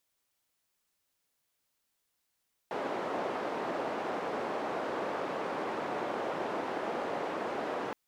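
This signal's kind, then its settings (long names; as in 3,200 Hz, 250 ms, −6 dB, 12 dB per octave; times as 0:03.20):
band-limited noise 330–740 Hz, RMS −35 dBFS 5.22 s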